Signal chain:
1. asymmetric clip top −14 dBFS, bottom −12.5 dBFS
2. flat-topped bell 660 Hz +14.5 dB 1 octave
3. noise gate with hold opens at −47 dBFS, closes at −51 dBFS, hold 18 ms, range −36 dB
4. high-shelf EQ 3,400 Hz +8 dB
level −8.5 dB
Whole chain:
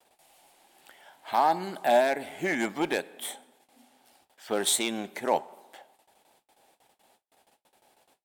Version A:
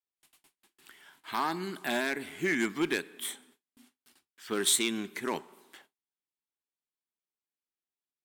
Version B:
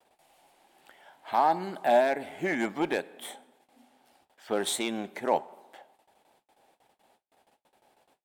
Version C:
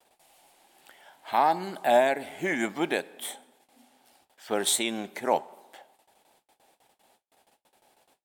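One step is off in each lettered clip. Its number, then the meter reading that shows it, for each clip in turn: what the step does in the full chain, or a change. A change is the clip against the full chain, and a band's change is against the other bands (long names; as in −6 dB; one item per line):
2, 1 kHz band −9.5 dB
4, 8 kHz band −6.5 dB
1, distortion level −17 dB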